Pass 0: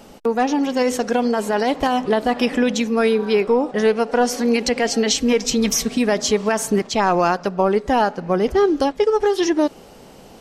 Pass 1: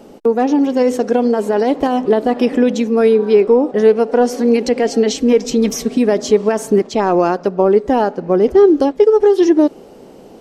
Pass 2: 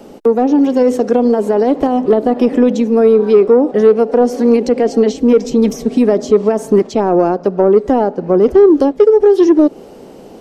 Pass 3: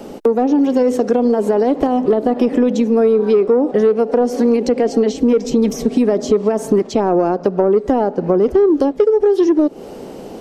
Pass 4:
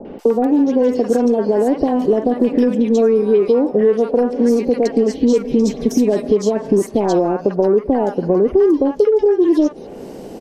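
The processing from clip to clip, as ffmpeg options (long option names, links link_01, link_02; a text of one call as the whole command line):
ffmpeg -i in.wav -af "equalizer=frequency=360:width_type=o:width=2:gain=12.5,volume=-4.5dB" out.wav
ffmpeg -i in.wav -filter_complex "[0:a]acrossover=split=300|890[link_01][link_02][link_03];[link_03]acompressor=threshold=-34dB:ratio=6[link_04];[link_01][link_02][link_04]amix=inputs=3:normalize=0,asoftclip=type=tanh:threshold=-3dB,volume=3.5dB" out.wav
ffmpeg -i in.wav -af "acompressor=threshold=-17dB:ratio=3,volume=4dB" out.wav
ffmpeg -i in.wav -filter_complex "[0:a]bandreject=frequency=1300:width=10,acrossover=split=910|3000[link_01][link_02][link_03];[link_02]adelay=50[link_04];[link_03]adelay=190[link_05];[link_01][link_04][link_05]amix=inputs=3:normalize=0" out.wav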